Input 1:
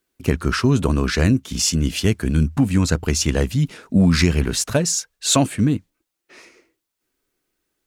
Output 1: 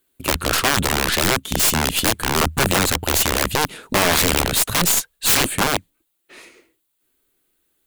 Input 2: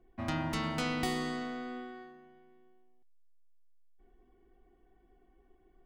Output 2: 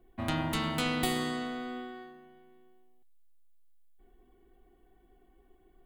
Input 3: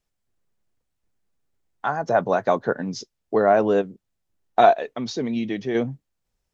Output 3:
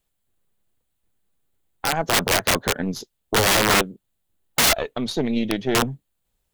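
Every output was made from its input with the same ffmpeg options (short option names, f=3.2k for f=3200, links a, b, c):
-af "aeval=exprs='0.75*(cos(1*acos(clip(val(0)/0.75,-1,1)))-cos(1*PI/2))+0.0237*(cos(2*acos(clip(val(0)/0.75,-1,1)))-cos(2*PI/2))+0.0211*(cos(3*acos(clip(val(0)/0.75,-1,1)))-cos(3*PI/2))+0.266*(cos(6*acos(clip(val(0)/0.75,-1,1)))-cos(6*PI/2))+0.075*(cos(8*acos(clip(val(0)/0.75,-1,1)))-cos(8*PI/2))':c=same,aexciter=amount=1.1:drive=5.9:freq=3k,aeval=exprs='(mod(3.98*val(0)+1,2)-1)/3.98':c=same,volume=3dB"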